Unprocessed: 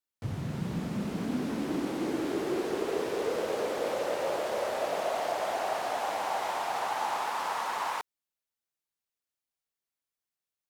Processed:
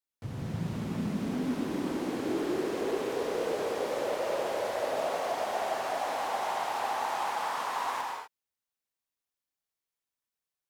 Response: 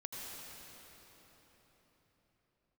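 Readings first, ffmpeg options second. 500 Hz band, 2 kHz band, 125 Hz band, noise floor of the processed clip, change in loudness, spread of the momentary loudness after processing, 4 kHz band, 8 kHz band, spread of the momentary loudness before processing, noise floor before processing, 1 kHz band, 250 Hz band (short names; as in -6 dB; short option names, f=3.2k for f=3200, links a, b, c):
-0.5 dB, -0.5 dB, 0.0 dB, under -85 dBFS, -0.5 dB, 4 LU, -0.5 dB, -1.0 dB, 3 LU, under -85 dBFS, 0.0 dB, 0.0 dB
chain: -filter_complex "[1:a]atrim=start_sample=2205,afade=t=out:st=0.31:d=0.01,atrim=end_sample=14112[a];[0:a][a]afir=irnorm=-1:irlink=0,volume=2dB"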